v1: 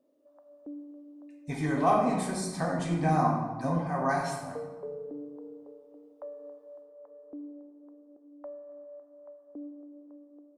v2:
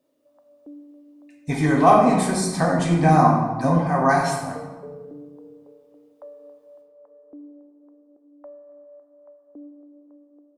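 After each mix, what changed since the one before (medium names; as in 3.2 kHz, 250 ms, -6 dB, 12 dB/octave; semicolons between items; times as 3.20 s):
speech +10.0 dB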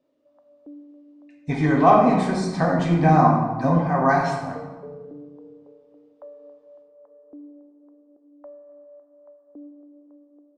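master: add distance through air 130 m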